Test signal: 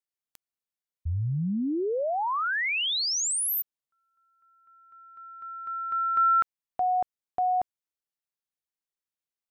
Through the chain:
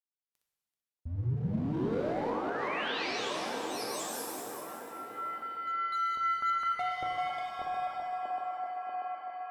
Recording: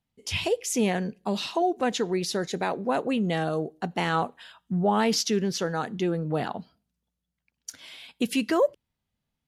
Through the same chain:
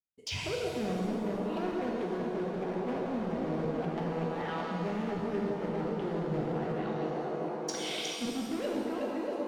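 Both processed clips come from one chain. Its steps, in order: backward echo that repeats 192 ms, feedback 49%, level -5 dB; low-pass that closes with the level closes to 760 Hz, closed at -21 dBFS; expander -54 dBFS, range -33 dB; low-pass that closes with the level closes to 600 Hz, closed at -24 dBFS; in parallel at -3.5 dB: wavefolder -29 dBFS; on the sum: dynamic bell 3.5 kHz, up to +6 dB, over -47 dBFS, Q 0.84; feedback echo behind a band-pass 638 ms, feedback 53%, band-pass 520 Hz, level -6 dB; reverse; compression 6:1, threshold -35 dBFS; reverse; pitch-shifted reverb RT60 1.8 s, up +7 st, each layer -8 dB, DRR -0.5 dB

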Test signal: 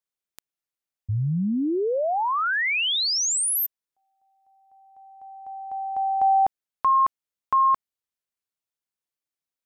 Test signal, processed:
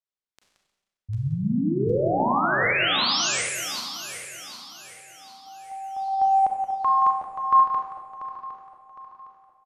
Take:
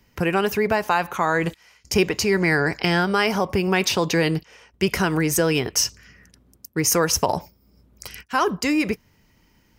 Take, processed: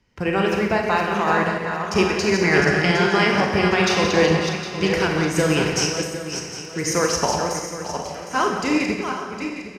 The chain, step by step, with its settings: backward echo that repeats 380 ms, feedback 61%, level -5 dB; low-pass 6.6 kHz 12 dB/octave; echo from a far wall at 30 m, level -8 dB; Schroeder reverb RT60 1.1 s, combs from 30 ms, DRR 1.5 dB; upward expansion 1.5:1, over -26 dBFS

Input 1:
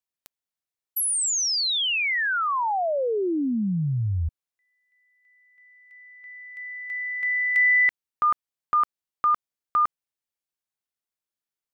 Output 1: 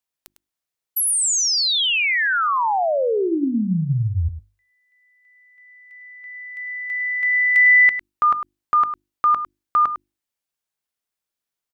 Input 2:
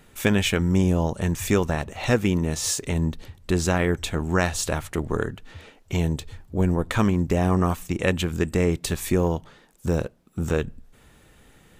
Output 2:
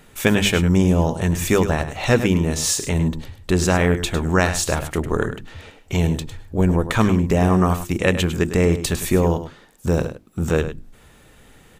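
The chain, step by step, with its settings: hum notches 50/100/150/200/250/300/350 Hz; on a send: delay 103 ms -11 dB; on the sum: trim +4.5 dB

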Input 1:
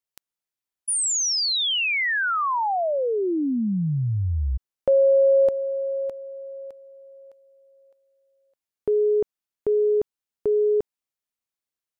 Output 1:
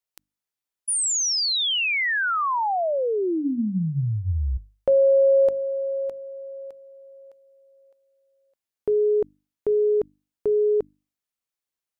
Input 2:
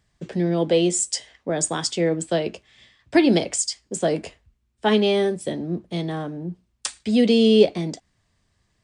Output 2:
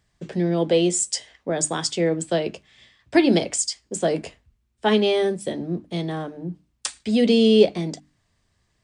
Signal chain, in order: hum notches 50/100/150/200/250/300 Hz

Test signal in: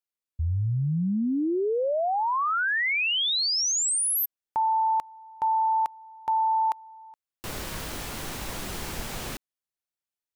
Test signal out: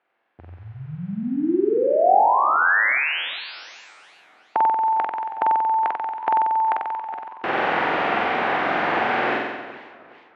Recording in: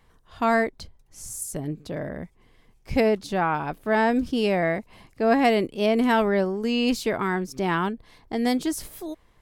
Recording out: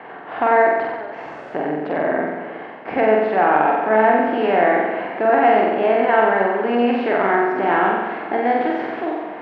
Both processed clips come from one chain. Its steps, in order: spectral levelling over time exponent 0.6; gate with hold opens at -45 dBFS, hold 71 ms, range -15 dB; in parallel at -1 dB: compression, threshold -31 dBFS; on the sum: saturation -4 dBFS; cabinet simulation 300–2400 Hz, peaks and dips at 340 Hz +3 dB, 750 Hz +7 dB, 1.6 kHz +3 dB; on a send: flutter echo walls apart 7.9 m, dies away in 1.2 s; on the sum: modulated delay 409 ms, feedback 40%, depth 182 cents, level -19 dB; trim -2 dB

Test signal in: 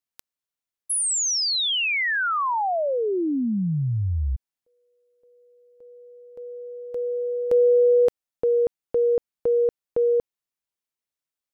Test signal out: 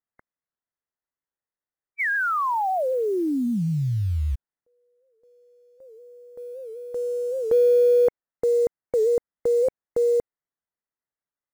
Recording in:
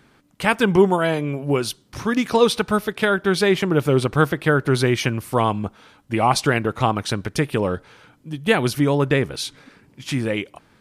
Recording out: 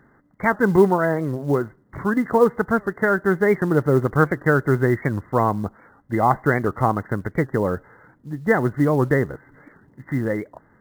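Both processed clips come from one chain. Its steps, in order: brick-wall FIR low-pass 2.1 kHz; short-mantissa float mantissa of 4-bit; warped record 78 rpm, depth 160 cents

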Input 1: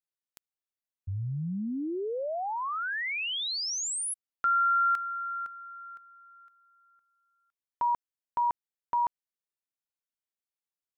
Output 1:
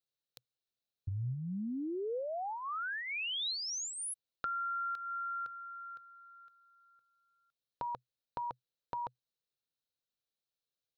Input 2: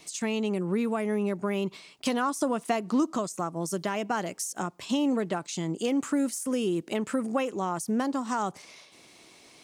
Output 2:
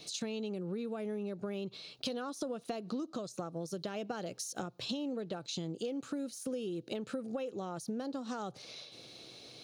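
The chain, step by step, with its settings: graphic EQ with 31 bands 125 Hz +11 dB, 500 Hz +7 dB, 1 kHz -10 dB, 2 kHz -9 dB, 4 kHz +10 dB, 8 kHz -11 dB, 12.5 kHz -11 dB; compression 6:1, threshold -36 dBFS

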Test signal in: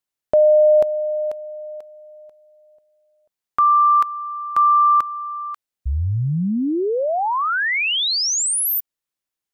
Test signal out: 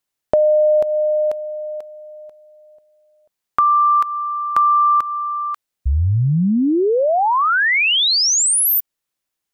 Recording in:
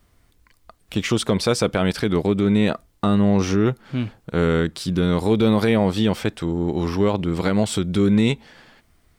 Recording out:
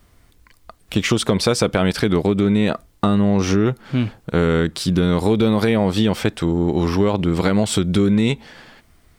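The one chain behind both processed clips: compression, threshold -18 dBFS; trim +5.5 dB

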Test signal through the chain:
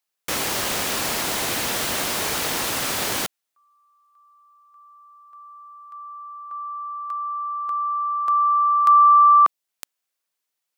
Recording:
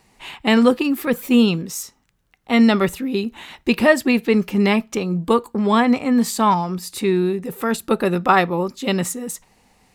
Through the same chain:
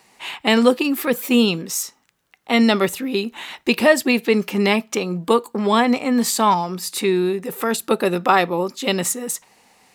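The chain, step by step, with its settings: high-pass 470 Hz 6 dB/octave; dynamic bell 1.4 kHz, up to -5 dB, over -32 dBFS, Q 0.79; loudness maximiser +6 dB; trim -1 dB

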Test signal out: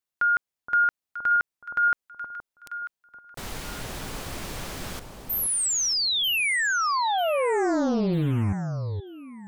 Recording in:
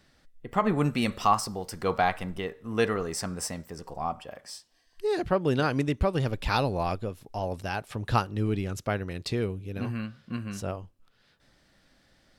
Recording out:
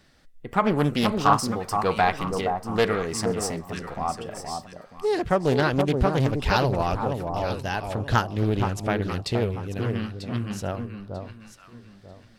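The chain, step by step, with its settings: echo whose repeats swap between lows and highs 471 ms, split 1.1 kHz, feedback 50%, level -5 dB; loudspeaker Doppler distortion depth 0.46 ms; trim +3.5 dB

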